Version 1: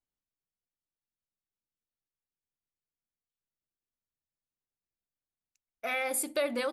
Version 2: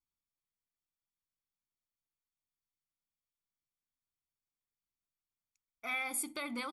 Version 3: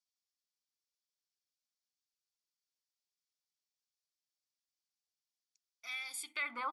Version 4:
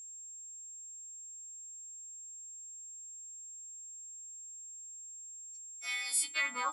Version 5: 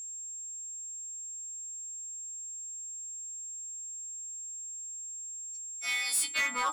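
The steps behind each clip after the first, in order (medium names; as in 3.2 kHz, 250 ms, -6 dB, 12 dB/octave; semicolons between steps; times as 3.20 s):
comb 0.9 ms, depth 75%; trim -6.5 dB
band-pass sweep 5.1 kHz -> 1 kHz, 6.10–6.65 s; trim +8 dB
partials quantised in pitch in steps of 2 st; whistle 7.5 kHz -48 dBFS; trim +2.5 dB
saturation -31 dBFS, distortion -11 dB; trim +7 dB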